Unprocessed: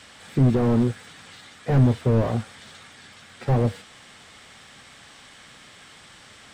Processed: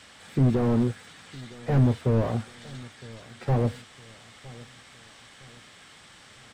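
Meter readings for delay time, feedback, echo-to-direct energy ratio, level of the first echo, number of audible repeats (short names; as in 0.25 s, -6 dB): 0.961 s, 40%, -20.5 dB, -21.0 dB, 2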